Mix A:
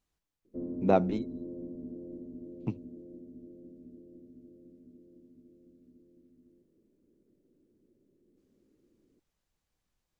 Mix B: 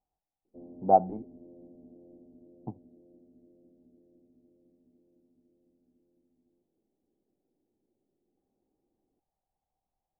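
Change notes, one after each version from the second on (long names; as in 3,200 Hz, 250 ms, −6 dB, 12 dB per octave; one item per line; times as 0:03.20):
speech +5.5 dB
master: add transistor ladder low-pass 820 Hz, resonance 80%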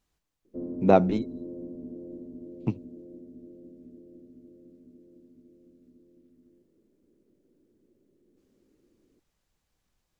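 background: add parametric band 790 Hz +4 dB 2.8 octaves
master: remove transistor ladder low-pass 820 Hz, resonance 80%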